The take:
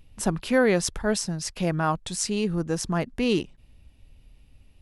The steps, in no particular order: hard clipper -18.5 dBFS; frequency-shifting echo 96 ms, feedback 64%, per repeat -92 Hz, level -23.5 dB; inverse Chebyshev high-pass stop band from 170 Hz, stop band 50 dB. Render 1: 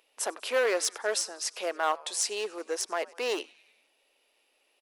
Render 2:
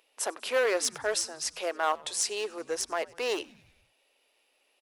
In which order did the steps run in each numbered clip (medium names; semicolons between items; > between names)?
frequency-shifting echo > hard clipper > inverse Chebyshev high-pass; hard clipper > inverse Chebyshev high-pass > frequency-shifting echo